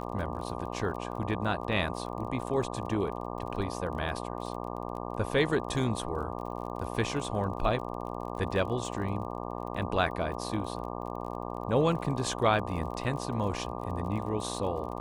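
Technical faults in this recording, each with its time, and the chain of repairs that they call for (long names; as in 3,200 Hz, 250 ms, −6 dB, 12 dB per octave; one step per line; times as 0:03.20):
mains buzz 60 Hz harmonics 20 −37 dBFS
surface crackle 34 per second −39 dBFS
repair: click removal
hum removal 60 Hz, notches 20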